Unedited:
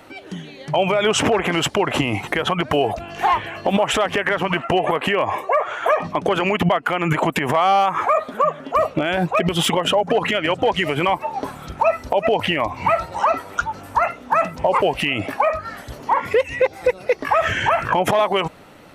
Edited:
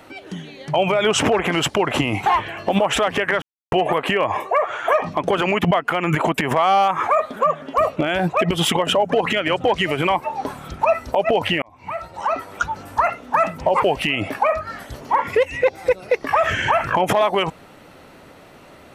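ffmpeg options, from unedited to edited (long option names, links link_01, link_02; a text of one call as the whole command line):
ffmpeg -i in.wav -filter_complex "[0:a]asplit=5[link_01][link_02][link_03][link_04][link_05];[link_01]atrim=end=2.262[link_06];[link_02]atrim=start=3.238:end=4.4,asetpts=PTS-STARTPTS,afade=type=out:start_time=1.158:duration=0.004:curve=hsin[link_07];[link_03]atrim=start=4.4:end=4.7,asetpts=PTS-STARTPTS,volume=0[link_08];[link_04]atrim=start=4.7:end=12.6,asetpts=PTS-STARTPTS,afade=type=in:duration=0.004:curve=hsin,afade=type=out:start_time=7.896:duration=0.004:curve=hsin[link_09];[link_05]atrim=start=12.6,asetpts=PTS-STARTPTS,afade=type=in:duration=1.05[link_10];[link_07][link_08][link_09][link_10]concat=n=4:v=0:a=1[link_11];[link_06][link_11]acrossfade=duration=0.004:curve1=hsin:curve2=hsin" out.wav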